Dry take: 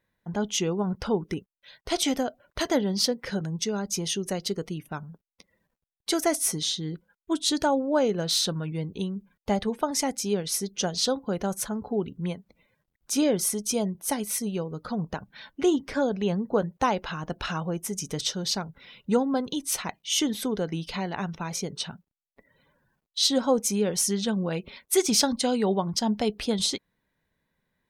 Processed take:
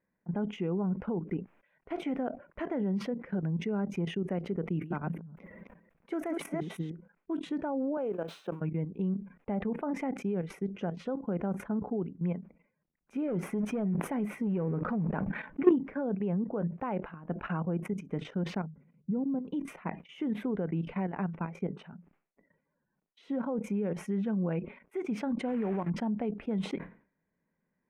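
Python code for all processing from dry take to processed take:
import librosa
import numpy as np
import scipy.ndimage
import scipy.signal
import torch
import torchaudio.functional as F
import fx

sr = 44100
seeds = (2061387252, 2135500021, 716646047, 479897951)

y = fx.chain(x, sr, fx.reverse_delay(ms=179, wet_db=-1.0),
    fx.high_shelf(hz=5900.0, db=9.5),
    fx.sustainer(db_per_s=26.0), at=(4.64, 6.9))
y = fx.chain(y, sr, fx.crossing_spikes(level_db=-29.0),
    fx.highpass(hz=370.0, slope=12),
    fx.peak_eq(hz=2000.0, db=-10.0, octaves=0.43), at=(7.97, 8.61))
y = fx.chain(y, sr, fx.leveller(passes=2),
    fx.sustainer(db_per_s=36.0), at=(13.28, 15.71))
y = fx.chain(y, sr, fx.bandpass_q(hz=120.0, q=0.79),
    fx.peak_eq(hz=150.0, db=11.5, octaves=0.39), at=(18.66, 19.45))
y = fx.chain(y, sr, fx.block_float(bits=3),
    fx.hum_notches(base_hz=60, count=3), at=(25.48, 25.91))
y = fx.level_steps(y, sr, step_db=16)
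y = fx.curve_eq(y, sr, hz=(120.0, 170.0, 2400.0, 4300.0), db=(0, 11, 2, -30))
y = fx.sustainer(y, sr, db_per_s=140.0)
y = y * librosa.db_to_amplitude(-7.5)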